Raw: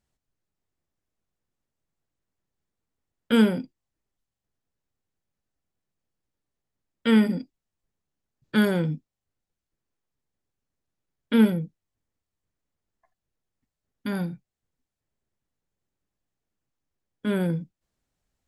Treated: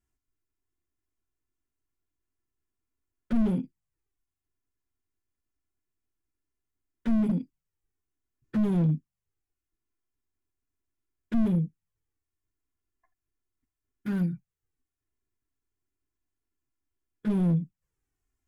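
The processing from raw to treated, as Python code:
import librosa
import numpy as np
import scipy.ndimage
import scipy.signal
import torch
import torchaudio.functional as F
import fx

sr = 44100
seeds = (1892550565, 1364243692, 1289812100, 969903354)

y = fx.graphic_eq_15(x, sr, hz=(160, 630, 4000), db=(4, -10, -11))
y = fx.env_flanger(y, sr, rest_ms=2.9, full_db=-20.5)
y = fx.slew_limit(y, sr, full_power_hz=17.0)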